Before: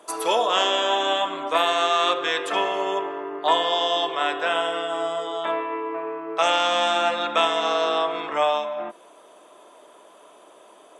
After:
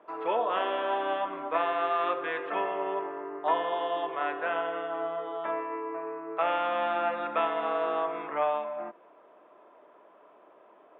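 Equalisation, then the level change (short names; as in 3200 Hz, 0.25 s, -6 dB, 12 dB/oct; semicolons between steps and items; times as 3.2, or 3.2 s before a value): inverse Chebyshev low-pass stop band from 9100 Hz, stop band 70 dB; air absorption 67 m; -6.0 dB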